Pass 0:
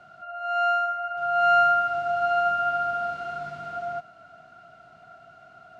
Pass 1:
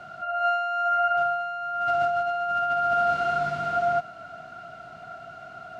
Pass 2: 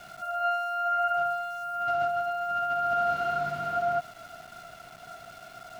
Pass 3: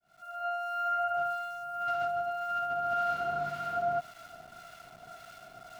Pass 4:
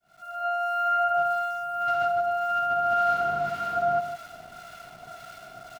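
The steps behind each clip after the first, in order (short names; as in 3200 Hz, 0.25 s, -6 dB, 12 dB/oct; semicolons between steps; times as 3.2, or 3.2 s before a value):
negative-ratio compressor -29 dBFS, ratio -1; gain +4 dB
sample gate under -43 dBFS; gain -3.5 dB
opening faded in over 0.65 s; harmonic tremolo 1.8 Hz, depth 50%, crossover 1000 Hz; gain -1.5 dB
outdoor echo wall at 27 m, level -9 dB; gain +5 dB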